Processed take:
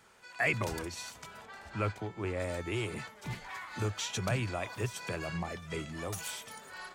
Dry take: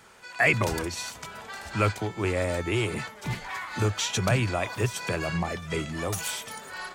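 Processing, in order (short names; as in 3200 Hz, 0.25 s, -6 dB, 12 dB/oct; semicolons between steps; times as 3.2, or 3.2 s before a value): 1.45–2.4 high shelf 3700 Hz -9.5 dB; gain -8 dB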